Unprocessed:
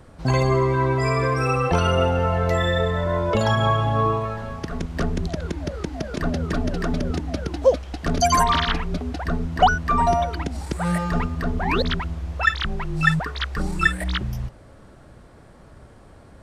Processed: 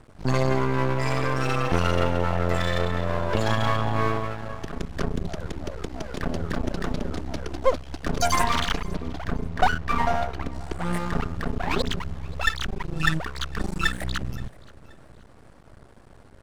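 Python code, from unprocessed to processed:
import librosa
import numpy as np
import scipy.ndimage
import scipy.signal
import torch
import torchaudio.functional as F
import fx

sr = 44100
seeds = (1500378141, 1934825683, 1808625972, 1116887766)

y = fx.lowpass(x, sr, hz=3300.0, slope=6, at=(8.94, 10.93))
y = np.maximum(y, 0.0)
y = fx.echo_feedback(y, sr, ms=526, feedback_pct=34, wet_db=-23)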